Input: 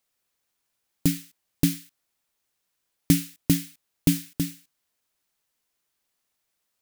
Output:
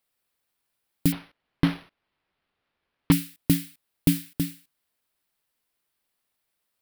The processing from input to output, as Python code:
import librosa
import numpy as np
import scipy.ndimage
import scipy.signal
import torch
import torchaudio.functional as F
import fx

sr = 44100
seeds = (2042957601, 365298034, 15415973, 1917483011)

y = fx.peak_eq(x, sr, hz=6500.0, db=-8.5, octaves=0.5)
y = fx.resample_linear(y, sr, factor=6, at=(1.12, 3.12))